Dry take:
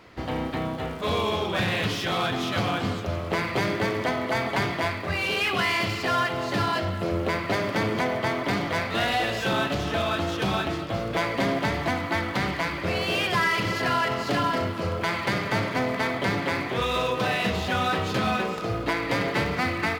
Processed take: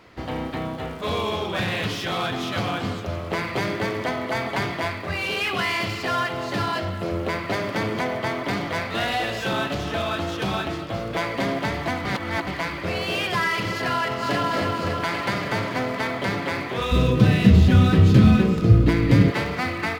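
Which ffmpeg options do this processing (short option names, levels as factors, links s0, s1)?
-filter_complex "[0:a]asplit=2[s0][s1];[s1]afade=t=in:st=13.94:d=0.01,afade=t=out:st=14.5:d=0.01,aecho=0:1:280|560|840|1120|1400|1680|1960|2240|2520|2800|3080|3360:0.630957|0.473218|0.354914|0.266185|0.199639|0.149729|0.112297|0.0842226|0.063167|0.0473752|0.0355314|0.0266486[s2];[s0][s2]amix=inputs=2:normalize=0,asplit=3[s3][s4][s5];[s3]afade=t=out:st=16.91:d=0.02[s6];[s4]asubboost=boost=10.5:cutoff=230,afade=t=in:st=16.91:d=0.02,afade=t=out:st=19.3:d=0.02[s7];[s5]afade=t=in:st=19.3:d=0.02[s8];[s6][s7][s8]amix=inputs=3:normalize=0,asplit=3[s9][s10][s11];[s9]atrim=end=12.052[s12];[s10]atrim=start=12.048:end=12.472,asetpts=PTS-STARTPTS,areverse[s13];[s11]atrim=start=12.468[s14];[s12][s13]acrossfade=d=0.004:c1=hsin:c2=hsin[s15];[s15][s14]acrossfade=d=0.004:c1=hsin:c2=hsin"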